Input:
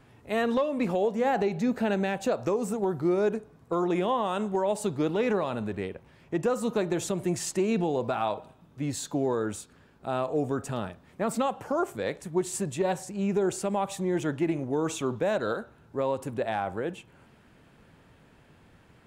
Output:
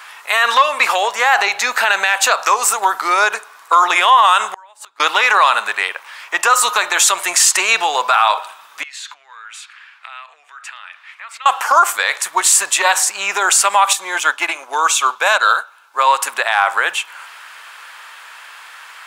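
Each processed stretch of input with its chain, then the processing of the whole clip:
0:04.47–0:05.00: dynamic equaliser 1,400 Hz, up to +6 dB, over −43 dBFS, Q 0.86 + gate with flip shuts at −23 dBFS, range −36 dB
0:08.83–0:11.46: downward compressor 5 to 1, threshold −42 dBFS + resonant band-pass 2,300 Hz, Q 2.1
0:13.93–0:16.07: low-shelf EQ 79 Hz −10 dB + notch filter 1,900 Hz, Q 7.4 + expander for the loud parts, over −44 dBFS
whole clip: Chebyshev high-pass filter 1,100 Hz, order 3; boost into a limiter +29 dB; level −1 dB

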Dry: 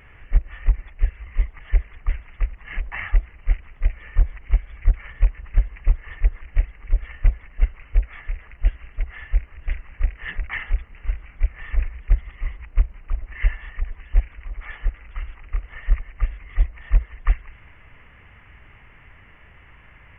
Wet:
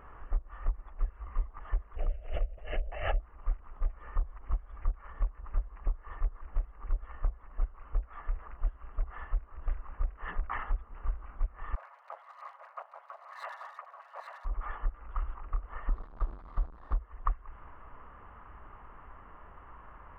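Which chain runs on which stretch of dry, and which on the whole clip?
0:01.96–0:03.20: drawn EQ curve 110 Hz 0 dB, 200 Hz −12 dB, 320 Hz −5 dB, 620 Hz +9 dB, 1,000 Hz −24 dB, 1,600 Hz −11 dB, 2,900 Hz +6 dB, 4,200 Hz −16 dB, 6,000 Hz −1 dB + background raised ahead of every attack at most 130 dB per second
0:11.75–0:14.45: lower of the sound and its delayed copy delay 7.2 ms + Butterworth high-pass 590 Hz 48 dB per octave + single-tap delay 836 ms −6 dB
0:15.89–0:16.94: linear delta modulator 64 kbit/s, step −28.5 dBFS + high-frequency loss of the air 420 metres + downward expander −30 dBFS
whole clip: high shelf with overshoot 1,600 Hz −11 dB, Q 3; downward compressor 6 to 1, threshold −25 dBFS; parametric band 110 Hz −10 dB 1.4 octaves

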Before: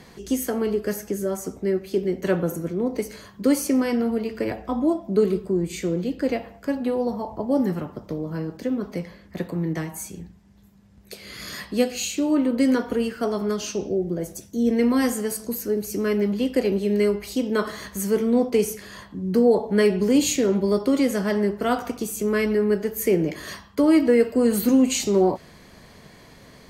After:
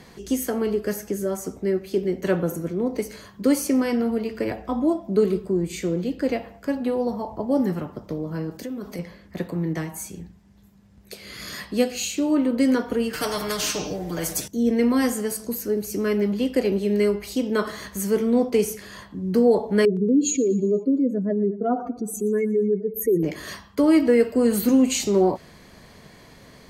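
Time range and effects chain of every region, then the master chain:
0:08.51–0:08.99: high-shelf EQ 6,100 Hz +12 dB + downward compressor 3 to 1, threshold −30 dBFS
0:13.13–0:14.48: comb filter 6.6 ms, depth 99% + every bin compressed towards the loudest bin 2 to 1
0:19.85–0:23.23: expanding power law on the bin magnitudes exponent 2.4 + repeating echo 118 ms, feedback 46%, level −19 dB
whole clip: no processing

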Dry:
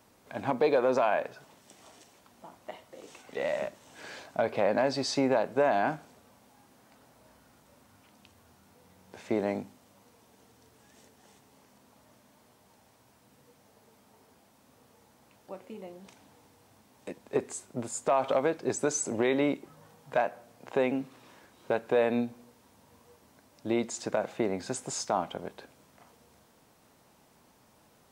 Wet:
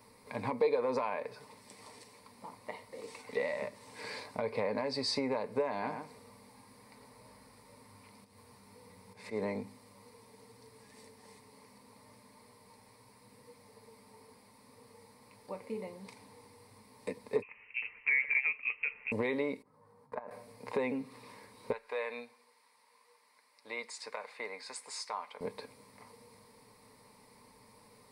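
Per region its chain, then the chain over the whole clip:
0:05.71–0:09.42: volume swells 140 ms + single-tap delay 111 ms −9 dB
0:17.42–0:19.12: high-frequency loss of the air 290 metres + voice inversion scrambler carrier 2,900 Hz
0:19.62–0:20.31: high-pass filter 57 Hz + high shelf with overshoot 1,900 Hz −9.5 dB, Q 1.5 + output level in coarse steps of 22 dB
0:21.72–0:25.41: high-pass filter 1,400 Hz + spectral tilt −2.5 dB per octave
whole clip: comb filter 6.7 ms, depth 34%; downward compressor 2.5 to 1, threshold −35 dBFS; EQ curve with evenly spaced ripples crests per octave 0.92, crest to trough 12 dB

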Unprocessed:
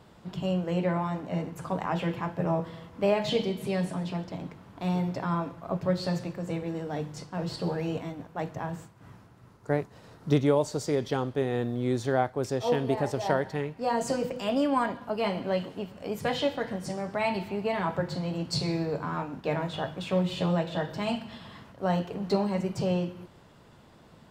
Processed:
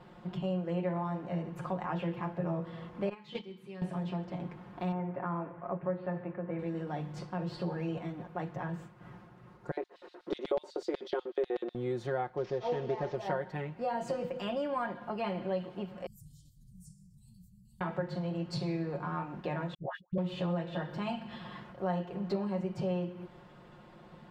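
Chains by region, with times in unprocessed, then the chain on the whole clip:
0:03.09–0:03.82: high-pass filter 230 Hz 6 dB per octave + parametric band 650 Hz −14 dB 0.45 octaves + noise gate −29 dBFS, range −15 dB
0:04.92–0:06.59: low-pass filter 2,200 Hz 24 dB per octave + low-shelf EQ 140 Hz −10.5 dB
0:09.71–0:11.75: high-pass filter 250 Hz 24 dB per octave + high-shelf EQ 6,000 Hz −9.5 dB + auto-filter high-pass square 8.1 Hz 370–3,900 Hz
0:12.37–0:13.16: variable-slope delta modulation 32 kbit/s + parametric band 430 Hz +7.5 dB 0.2 octaves
0:16.06–0:17.81: inverse Chebyshev band-stop filter 390–2,300 Hz, stop band 70 dB + parametric band 210 Hz −5.5 dB 0.35 octaves + background raised ahead of every attack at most 39 dB per second
0:19.74–0:20.18: noise gate −31 dBFS, range −60 dB + all-pass dispersion highs, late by 135 ms, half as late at 930 Hz
whole clip: bass and treble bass −2 dB, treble −13 dB; comb filter 5.6 ms, depth 74%; downward compressor 2 to 1, threshold −37 dBFS

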